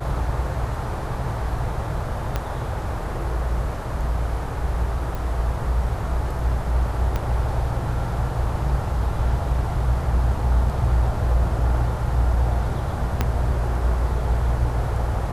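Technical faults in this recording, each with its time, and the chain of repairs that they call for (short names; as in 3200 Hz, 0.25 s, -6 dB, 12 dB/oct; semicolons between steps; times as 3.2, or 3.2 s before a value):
2.36 pop -10 dBFS
5.15 pop
7.16 pop -12 dBFS
13.21 pop -7 dBFS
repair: de-click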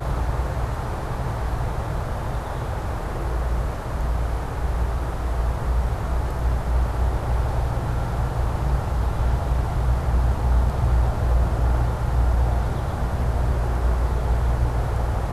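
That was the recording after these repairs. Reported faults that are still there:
2.36 pop
7.16 pop
13.21 pop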